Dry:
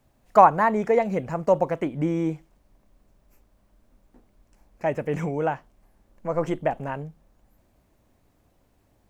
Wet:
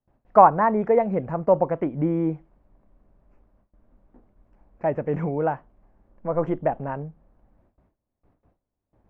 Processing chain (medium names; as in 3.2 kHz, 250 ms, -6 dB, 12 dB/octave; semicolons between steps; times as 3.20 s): gate with hold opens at -53 dBFS; low-pass 1.4 kHz 12 dB/octave; trim +1.5 dB